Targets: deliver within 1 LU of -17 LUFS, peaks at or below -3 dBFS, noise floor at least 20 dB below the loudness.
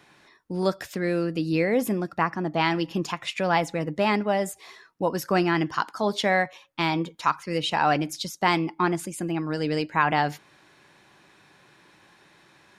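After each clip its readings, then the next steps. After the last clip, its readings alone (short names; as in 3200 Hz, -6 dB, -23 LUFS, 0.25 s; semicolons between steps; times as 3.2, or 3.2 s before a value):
loudness -25.5 LUFS; peak -6.5 dBFS; loudness target -17.0 LUFS
-> gain +8.5 dB; limiter -3 dBFS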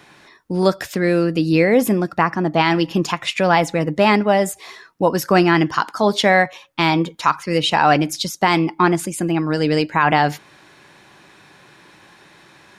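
loudness -17.5 LUFS; peak -3.0 dBFS; noise floor -49 dBFS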